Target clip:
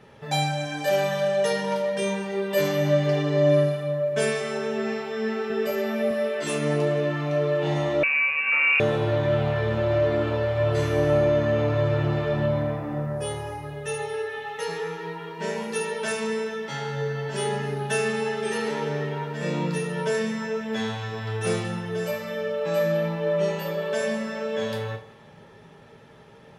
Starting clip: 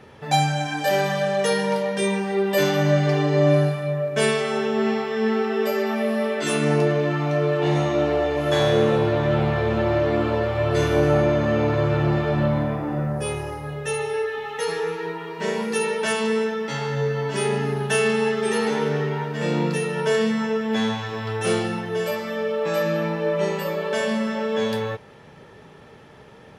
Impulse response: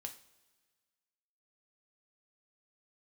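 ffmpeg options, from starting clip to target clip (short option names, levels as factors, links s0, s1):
-filter_complex "[0:a]asettb=1/sr,asplit=3[s0][s1][s2];[s0]atrim=end=5.504[s3];[s1]atrim=start=5.5:end=6.11,asetpts=PTS-STARTPTS,afade=t=in:d=0.004:c=qsin,afade=t=out:st=0.606:d=0.004:c=qsin,lowshelf=f=190:g=9[s4];[s2]atrim=start=6.106[s5];[s3][s4]acrossfade=d=0.004:c1=hsin:c2=qsin[s6];[s6][s5]acrossfade=d=0.004:c1=qsin:c2=hsin[s7];[1:a]atrim=start_sample=2205[s8];[s7][s8]afir=irnorm=-1:irlink=0,asettb=1/sr,asplit=3[s9][s10][s11];[s9]atrim=end=8.034[s12];[s10]atrim=start=8.03:end=8.8,asetpts=PTS-STARTPTS,afade=t=in:d=0.004:c=qsin,afade=t=out:st=0.766:d=0.004:c=qsin,lowpass=f=2500:t=q:w=0.5098,lowpass=f=2500:t=q:w=0.6013,lowpass=f=2500:t=q:w=0.9,lowpass=f=2500:t=q:w=2.563,afreqshift=-2900[s13];[s11]atrim=start=8.796[s14];[s12][s13]acrossfade=d=0.004:c1=hsin:c2=qsin[s15];[s15][s14]acrossfade=d=0.004:c1=qsin:c2=hsin"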